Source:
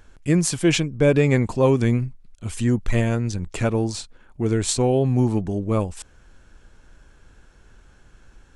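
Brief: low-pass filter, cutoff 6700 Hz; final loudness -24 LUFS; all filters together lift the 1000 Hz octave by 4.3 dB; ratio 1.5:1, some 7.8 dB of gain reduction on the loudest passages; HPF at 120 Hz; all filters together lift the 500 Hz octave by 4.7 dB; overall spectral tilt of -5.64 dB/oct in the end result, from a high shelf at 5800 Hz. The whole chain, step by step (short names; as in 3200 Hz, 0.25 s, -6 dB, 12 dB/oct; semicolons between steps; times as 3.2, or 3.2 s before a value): HPF 120 Hz; LPF 6700 Hz; bell 500 Hz +5 dB; bell 1000 Hz +3.5 dB; high shelf 5800 Hz +4 dB; compressor 1.5:1, threshold -31 dBFS; gain +2 dB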